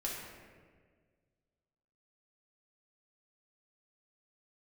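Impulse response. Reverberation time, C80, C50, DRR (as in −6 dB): 1.7 s, 2.5 dB, 0.5 dB, −4.5 dB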